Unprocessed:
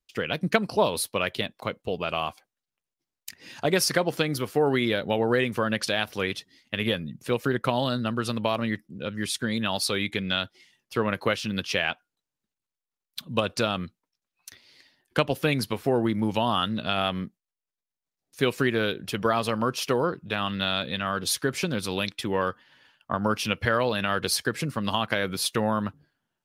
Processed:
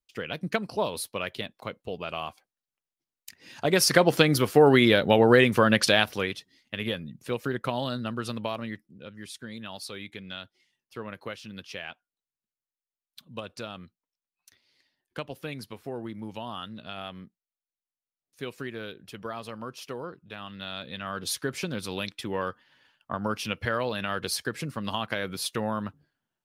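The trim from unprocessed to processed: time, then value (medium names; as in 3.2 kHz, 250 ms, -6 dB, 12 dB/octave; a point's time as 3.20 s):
3.38 s -5.5 dB
4.05 s +5.5 dB
5.96 s +5.5 dB
6.38 s -4.5 dB
8.33 s -4.5 dB
9.19 s -12.5 dB
20.51 s -12.5 dB
21.27 s -4.5 dB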